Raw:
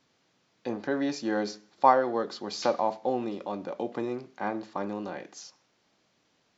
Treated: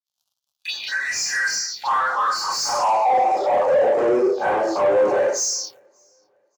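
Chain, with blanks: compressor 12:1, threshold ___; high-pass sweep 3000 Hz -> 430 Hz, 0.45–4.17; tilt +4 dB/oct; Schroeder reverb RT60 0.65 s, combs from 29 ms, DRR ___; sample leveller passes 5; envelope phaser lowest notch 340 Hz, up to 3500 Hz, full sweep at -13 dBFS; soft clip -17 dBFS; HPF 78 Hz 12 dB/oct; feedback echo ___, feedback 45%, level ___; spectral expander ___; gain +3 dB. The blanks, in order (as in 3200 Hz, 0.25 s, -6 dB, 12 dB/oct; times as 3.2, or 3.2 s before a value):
-29 dBFS, -7.5 dB, 0.584 s, -23 dB, 1.5:1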